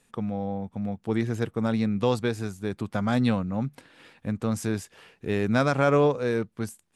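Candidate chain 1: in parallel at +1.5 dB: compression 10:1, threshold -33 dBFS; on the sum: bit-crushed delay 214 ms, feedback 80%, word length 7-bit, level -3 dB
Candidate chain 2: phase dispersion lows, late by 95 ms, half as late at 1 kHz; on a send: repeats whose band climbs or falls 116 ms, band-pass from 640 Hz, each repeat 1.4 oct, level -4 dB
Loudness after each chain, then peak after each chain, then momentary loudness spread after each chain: -22.5 LUFS, -26.5 LUFS; -5.0 dBFS, -9.0 dBFS; 8 LU, 12 LU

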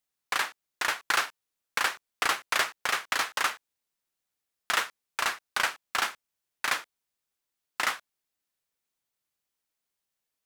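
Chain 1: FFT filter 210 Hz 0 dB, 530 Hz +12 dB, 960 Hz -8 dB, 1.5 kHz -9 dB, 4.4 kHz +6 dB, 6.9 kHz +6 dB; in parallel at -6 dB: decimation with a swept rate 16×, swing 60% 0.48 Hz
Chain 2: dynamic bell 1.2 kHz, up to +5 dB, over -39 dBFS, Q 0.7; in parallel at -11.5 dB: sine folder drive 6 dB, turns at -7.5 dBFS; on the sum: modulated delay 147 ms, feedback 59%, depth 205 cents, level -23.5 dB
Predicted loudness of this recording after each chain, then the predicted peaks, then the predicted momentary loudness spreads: -28.0 LUFS, -22.0 LUFS; -7.0 dBFS, -7.5 dBFS; 8 LU, 8 LU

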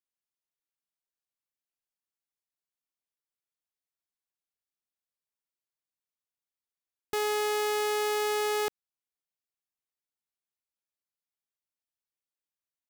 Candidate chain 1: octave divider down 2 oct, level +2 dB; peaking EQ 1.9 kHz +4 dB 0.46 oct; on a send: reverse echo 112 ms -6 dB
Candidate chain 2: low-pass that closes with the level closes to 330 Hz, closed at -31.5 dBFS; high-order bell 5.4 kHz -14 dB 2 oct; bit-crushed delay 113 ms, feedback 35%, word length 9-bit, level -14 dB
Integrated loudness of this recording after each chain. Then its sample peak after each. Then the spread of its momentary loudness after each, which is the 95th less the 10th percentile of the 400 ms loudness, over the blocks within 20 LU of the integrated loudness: -27.0 LUFS, -38.5 LUFS; -19.0 dBFS, -23.0 dBFS; 7 LU, 4 LU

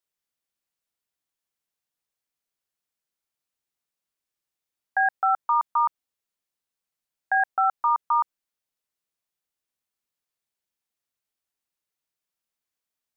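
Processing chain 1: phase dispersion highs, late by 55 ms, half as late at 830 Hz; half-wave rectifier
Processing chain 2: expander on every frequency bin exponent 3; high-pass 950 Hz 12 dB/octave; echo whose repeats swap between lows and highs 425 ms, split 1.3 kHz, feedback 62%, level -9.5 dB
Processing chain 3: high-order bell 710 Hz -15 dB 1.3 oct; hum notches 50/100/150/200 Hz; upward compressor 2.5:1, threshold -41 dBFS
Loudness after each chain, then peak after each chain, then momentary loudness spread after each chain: -28.5 LUFS, -28.0 LUFS, -28.0 LUFS; -13.5 dBFS, -16.0 dBFS, -19.0 dBFS; 6 LU, 18 LU, 6 LU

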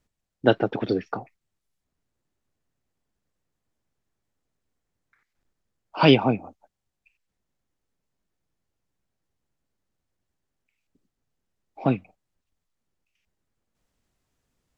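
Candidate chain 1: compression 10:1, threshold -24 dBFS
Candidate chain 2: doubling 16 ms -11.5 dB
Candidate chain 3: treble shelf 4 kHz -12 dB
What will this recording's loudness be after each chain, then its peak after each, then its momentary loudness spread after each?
-32.5 LUFS, -22.5 LUFS, -23.5 LUFS; -13.5 dBFS, -2.5 dBFS, -4.0 dBFS; 11 LU, 16 LU, 17 LU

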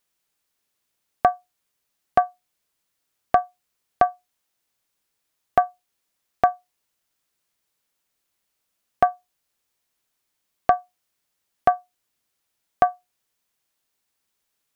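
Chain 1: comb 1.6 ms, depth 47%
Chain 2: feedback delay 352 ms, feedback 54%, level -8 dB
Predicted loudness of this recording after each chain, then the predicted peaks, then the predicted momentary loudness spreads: -22.0 LUFS, -27.0 LUFS; -2.0 dBFS, -3.5 dBFS; 8 LU, 19 LU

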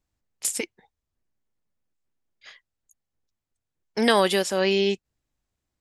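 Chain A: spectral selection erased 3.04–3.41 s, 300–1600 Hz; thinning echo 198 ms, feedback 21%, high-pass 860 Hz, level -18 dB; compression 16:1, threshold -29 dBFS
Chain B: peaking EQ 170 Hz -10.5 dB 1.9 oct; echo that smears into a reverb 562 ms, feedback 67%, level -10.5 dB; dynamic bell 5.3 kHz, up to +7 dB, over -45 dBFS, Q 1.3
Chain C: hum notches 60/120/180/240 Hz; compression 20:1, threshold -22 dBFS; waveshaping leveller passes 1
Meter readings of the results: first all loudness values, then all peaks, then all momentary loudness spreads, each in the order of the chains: -35.0 LUFS, -25.0 LUFS, -26.0 LUFS; -16.5 dBFS, -5.0 dBFS, -13.0 dBFS; 18 LU, 22 LU, 10 LU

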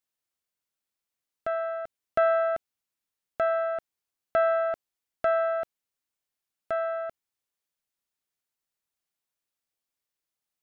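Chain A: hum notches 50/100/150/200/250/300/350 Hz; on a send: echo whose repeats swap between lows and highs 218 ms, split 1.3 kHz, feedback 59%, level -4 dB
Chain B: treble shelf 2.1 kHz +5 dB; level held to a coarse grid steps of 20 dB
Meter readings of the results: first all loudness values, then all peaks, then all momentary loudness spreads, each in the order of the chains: -27.0 LUFS, -38.0 LUFS; -13.5 dBFS, -14.5 dBFS; 17 LU, 18 LU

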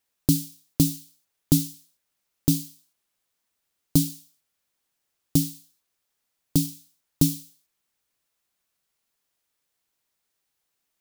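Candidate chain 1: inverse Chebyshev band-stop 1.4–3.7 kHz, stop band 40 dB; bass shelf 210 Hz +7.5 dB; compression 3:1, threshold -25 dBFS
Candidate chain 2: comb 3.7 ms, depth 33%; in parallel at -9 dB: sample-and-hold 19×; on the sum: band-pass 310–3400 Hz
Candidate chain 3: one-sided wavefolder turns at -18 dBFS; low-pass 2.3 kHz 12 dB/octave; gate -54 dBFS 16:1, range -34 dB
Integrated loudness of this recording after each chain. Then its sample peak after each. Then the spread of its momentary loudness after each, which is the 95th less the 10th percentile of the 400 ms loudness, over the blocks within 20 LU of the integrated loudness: -32.0 LUFS, -28.5 LUFS, -30.5 LUFS; -7.5 dBFS, -9.0 dBFS, -9.0 dBFS; 14 LU, 11 LU, 8 LU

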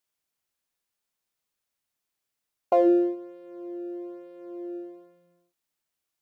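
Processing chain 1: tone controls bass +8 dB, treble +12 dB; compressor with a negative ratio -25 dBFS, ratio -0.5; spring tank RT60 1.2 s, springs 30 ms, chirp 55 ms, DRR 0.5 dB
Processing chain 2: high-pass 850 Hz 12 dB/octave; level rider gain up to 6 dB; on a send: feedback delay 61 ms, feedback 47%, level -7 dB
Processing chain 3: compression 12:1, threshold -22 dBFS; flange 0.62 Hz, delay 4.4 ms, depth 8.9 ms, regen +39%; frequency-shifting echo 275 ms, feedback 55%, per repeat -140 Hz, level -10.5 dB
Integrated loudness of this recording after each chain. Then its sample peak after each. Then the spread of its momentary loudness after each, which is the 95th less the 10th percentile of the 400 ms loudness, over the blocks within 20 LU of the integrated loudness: -33.5 LUFS, -26.5 LUFS, -36.5 LUFS; -17.0 dBFS, -11.0 dBFS, -18.5 dBFS; 9 LU, 13 LU, 16 LU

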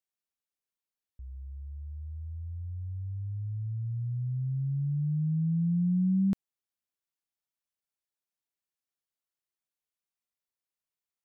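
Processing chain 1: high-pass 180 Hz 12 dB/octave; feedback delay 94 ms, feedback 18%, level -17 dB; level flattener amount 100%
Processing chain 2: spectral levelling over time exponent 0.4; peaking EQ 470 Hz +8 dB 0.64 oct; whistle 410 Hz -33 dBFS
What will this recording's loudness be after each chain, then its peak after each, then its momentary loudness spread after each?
-28.0 LUFS, -32.0 LUFS; -17.0 dBFS, -16.5 dBFS; 3 LU, 11 LU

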